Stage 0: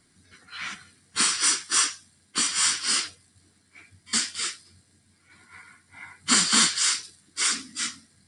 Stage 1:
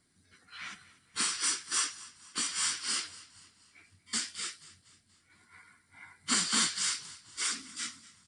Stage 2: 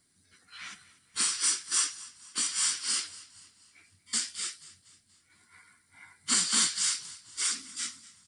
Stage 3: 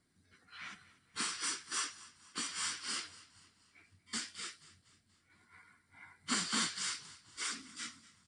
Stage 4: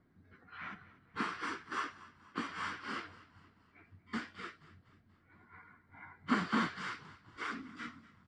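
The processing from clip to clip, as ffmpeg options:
ffmpeg -i in.wav -filter_complex "[0:a]asplit=5[link_01][link_02][link_03][link_04][link_05];[link_02]adelay=240,afreqshift=-36,volume=-19dB[link_06];[link_03]adelay=480,afreqshift=-72,volume=-25.6dB[link_07];[link_04]adelay=720,afreqshift=-108,volume=-32.1dB[link_08];[link_05]adelay=960,afreqshift=-144,volume=-38.7dB[link_09];[link_01][link_06][link_07][link_08][link_09]amix=inputs=5:normalize=0,volume=-8.5dB" out.wav
ffmpeg -i in.wav -af "highshelf=frequency=4200:gain=8.5,volume=-2.5dB" out.wav
ffmpeg -i in.wav -af "lowpass=frequency=1800:poles=1" out.wav
ffmpeg -i in.wav -af "lowpass=1400,volume=8dB" out.wav

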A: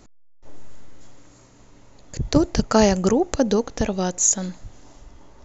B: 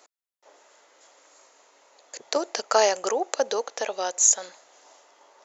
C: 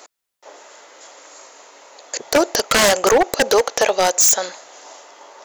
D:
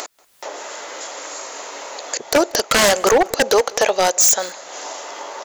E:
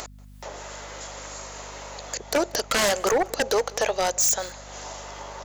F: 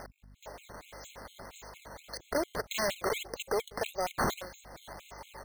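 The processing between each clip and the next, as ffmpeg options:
ffmpeg -i in.wav -af "highpass=frequency=500:width=0.5412,highpass=frequency=500:width=1.3066" out.wav
ffmpeg -i in.wav -filter_complex "[0:a]asplit=2[link_01][link_02];[link_02]alimiter=limit=-12.5dB:level=0:latency=1:release=38,volume=2dB[link_03];[link_01][link_03]amix=inputs=2:normalize=0,aeval=exprs='0.2*(abs(mod(val(0)/0.2+3,4)-2)-1)':channel_layout=same,volume=6.5dB" out.wav
ffmpeg -i in.wav -filter_complex "[0:a]acompressor=mode=upward:threshold=-20dB:ratio=2.5,asplit=2[link_01][link_02];[link_02]adelay=186.6,volume=-23dB,highshelf=frequency=4000:gain=-4.2[link_03];[link_01][link_03]amix=inputs=2:normalize=0" out.wav
ffmpeg -i in.wav -af "asoftclip=type=hard:threshold=-10dB,aeval=exprs='val(0)+0.0126*(sin(2*PI*50*n/s)+sin(2*PI*2*50*n/s)/2+sin(2*PI*3*50*n/s)/3+sin(2*PI*4*50*n/s)/4+sin(2*PI*5*50*n/s)/5)':channel_layout=same,volume=-7dB" out.wav
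ffmpeg -i in.wav -af "acrusher=samples=10:mix=1:aa=0.000001:lfo=1:lforange=16:lforate=1.7,afftfilt=real='re*gt(sin(2*PI*4.3*pts/sr)*(1-2*mod(floor(b*sr/1024/2100),2)),0)':imag='im*gt(sin(2*PI*4.3*pts/sr)*(1-2*mod(floor(b*sr/1024/2100),2)),0)':win_size=1024:overlap=0.75,volume=-7.5dB" out.wav

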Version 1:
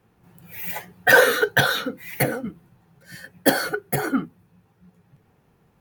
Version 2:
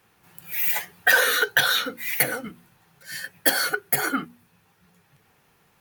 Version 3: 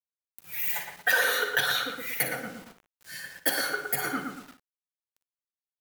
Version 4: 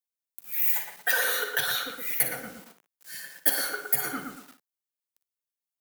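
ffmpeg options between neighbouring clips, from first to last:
ffmpeg -i in.wav -af "tiltshelf=frequency=890:gain=-8,bandreject=frequency=60:width_type=h:width=6,bandreject=frequency=120:width_type=h:width=6,bandreject=frequency=180:width_type=h:width=6,bandreject=frequency=240:width_type=h:width=6,acompressor=threshold=-21dB:ratio=2.5,volume=2dB" out.wav
ffmpeg -i in.wav -filter_complex "[0:a]asplit=2[link_01][link_02];[link_02]adelay=115,lowpass=frequency=2100:poles=1,volume=-4dB,asplit=2[link_03][link_04];[link_04]adelay=115,lowpass=frequency=2100:poles=1,volume=0.41,asplit=2[link_05][link_06];[link_06]adelay=115,lowpass=frequency=2100:poles=1,volume=0.41,asplit=2[link_07][link_08];[link_08]adelay=115,lowpass=frequency=2100:poles=1,volume=0.41,asplit=2[link_09][link_10];[link_10]adelay=115,lowpass=frequency=2100:poles=1,volume=0.41[link_11];[link_03][link_05][link_07][link_09][link_11]amix=inputs=5:normalize=0[link_12];[link_01][link_12]amix=inputs=2:normalize=0,acrusher=bits=6:mix=0:aa=0.000001,asplit=2[link_13][link_14];[link_14]aecho=0:1:46|58:0.133|0.266[link_15];[link_13][link_15]amix=inputs=2:normalize=0,volume=-6.5dB" out.wav
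ffmpeg -i in.wav -filter_complex "[0:a]acrossover=split=150|2900[link_01][link_02][link_03];[link_01]acrusher=bits=8:mix=0:aa=0.000001[link_04];[link_03]crystalizer=i=1:c=0[link_05];[link_04][link_02][link_05]amix=inputs=3:normalize=0,volume=-3dB" out.wav

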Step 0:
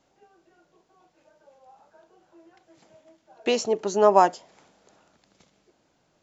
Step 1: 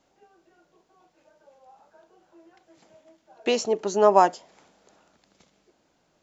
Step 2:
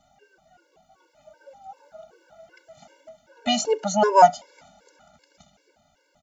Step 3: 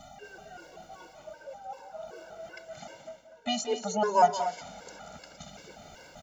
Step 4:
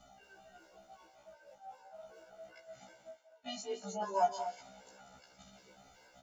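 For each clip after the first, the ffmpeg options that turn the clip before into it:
ffmpeg -i in.wav -af "equalizer=frequency=120:width=3.8:gain=-6.5" out.wav
ffmpeg -i in.wav -af "aecho=1:1:1.4:0.73,dynaudnorm=framelen=270:gausssize=9:maxgain=3.5dB,afftfilt=real='re*gt(sin(2*PI*2.6*pts/sr)*(1-2*mod(floor(b*sr/1024/290),2)),0)':imag='im*gt(sin(2*PI*2.6*pts/sr)*(1-2*mod(floor(b*sr/1024/290),2)),0)':win_size=1024:overlap=0.75,volume=5.5dB" out.wav
ffmpeg -i in.wav -af "areverse,acompressor=mode=upward:threshold=-23dB:ratio=2.5,areverse,aecho=1:1:177|238:0.237|0.251,volume=-8dB" out.wav
ffmpeg -i in.wav -filter_complex "[0:a]acrossover=split=400|3700[link_01][link_02][link_03];[link_01]aeval=exprs='val(0)*gte(abs(val(0)),0.00112)':channel_layout=same[link_04];[link_04][link_02][link_03]amix=inputs=3:normalize=0,afftfilt=real='re*1.73*eq(mod(b,3),0)':imag='im*1.73*eq(mod(b,3),0)':win_size=2048:overlap=0.75,volume=-8.5dB" out.wav

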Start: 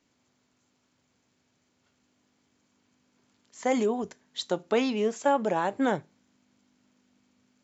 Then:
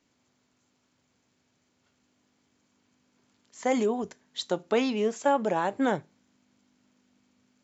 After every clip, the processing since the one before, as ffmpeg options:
ffmpeg -i in.wav -af anull out.wav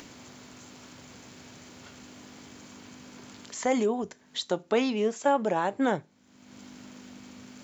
ffmpeg -i in.wav -af "acompressor=mode=upward:threshold=-29dB:ratio=2.5" out.wav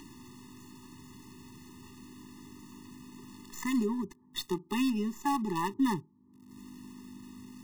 ffmpeg -i in.wav -filter_complex "[0:a]acrossover=split=1000[link_01][link_02];[link_02]acrusher=bits=6:dc=4:mix=0:aa=0.000001[link_03];[link_01][link_03]amix=inputs=2:normalize=0,afftfilt=real='re*eq(mod(floor(b*sr/1024/420),2),0)':imag='im*eq(mod(floor(b*sr/1024/420),2),0)':win_size=1024:overlap=0.75" out.wav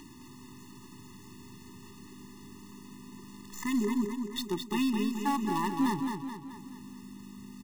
ffmpeg -i in.wav -filter_complex "[0:a]volume=22.5dB,asoftclip=hard,volume=-22.5dB,asplit=2[link_01][link_02];[link_02]aecho=0:1:215|430|645|860|1075|1290:0.531|0.271|0.138|0.0704|0.0359|0.0183[link_03];[link_01][link_03]amix=inputs=2:normalize=0" out.wav

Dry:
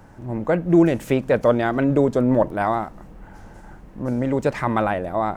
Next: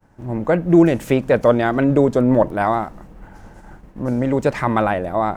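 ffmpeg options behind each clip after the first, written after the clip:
ffmpeg -i in.wav -af "agate=range=-33dB:threshold=-38dB:ratio=3:detection=peak,volume=3dB" out.wav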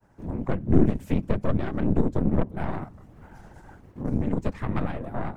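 ffmpeg -i in.wav -filter_complex "[0:a]afftfilt=real='hypot(re,im)*cos(2*PI*random(0))':imag='hypot(re,im)*sin(2*PI*random(1))':win_size=512:overlap=0.75,aeval=exprs='0.631*(cos(1*acos(clip(val(0)/0.631,-1,1)))-cos(1*PI/2))+0.0891*(cos(4*acos(clip(val(0)/0.631,-1,1)))-cos(4*PI/2))+0.0316*(cos(7*acos(clip(val(0)/0.631,-1,1)))-cos(7*PI/2))+0.0355*(cos(8*acos(clip(val(0)/0.631,-1,1)))-cos(8*PI/2))':channel_layout=same,acrossover=split=260[link_01][link_02];[link_02]acompressor=threshold=-47dB:ratio=2[link_03];[link_01][link_03]amix=inputs=2:normalize=0,volume=4dB" out.wav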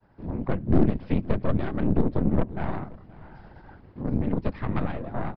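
ffmpeg -i in.wav -af "aresample=11025,volume=10dB,asoftclip=hard,volume=-10dB,aresample=44100,aecho=1:1:525:0.0841" out.wav

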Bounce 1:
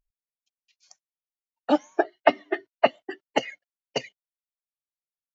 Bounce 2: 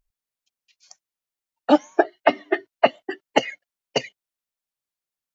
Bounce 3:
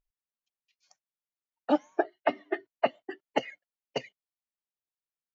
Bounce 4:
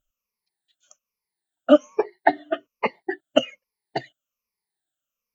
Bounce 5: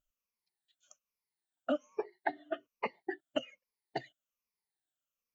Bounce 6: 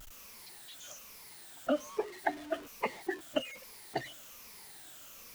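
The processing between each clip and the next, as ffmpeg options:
ffmpeg -i in.wav -af "alimiter=level_in=6.5dB:limit=-1dB:release=50:level=0:latency=1,volume=-1dB" out.wav
ffmpeg -i in.wav -af "highshelf=frequency=4400:gain=-10.5,volume=-9dB" out.wav
ffmpeg -i in.wav -af "afftfilt=real='re*pow(10,23/40*sin(2*PI*(0.85*log(max(b,1)*sr/1024/100)/log(2)-(-1.2)*(pts-256)/sr)))':imag='im*pow(10,23/40*sin(2*PI*(0.85*log(max(b,1)*sr/1024/100)/log(2)-(-1.2)*(pts-256)/sr)))':win_size=1024:overlap=0.75,volume=3dB" out.wav
ffmpeg -i in.wav -af "acompressor=threshold=-26dB:ratio=3,volume=-7dB" out.wav
ffmpeg -i in.wav -af "aeval=exprs='val(0)+0.5*0.00596*sgn(val(0))':channel_layout=same,volume=1.5dB" out.wav

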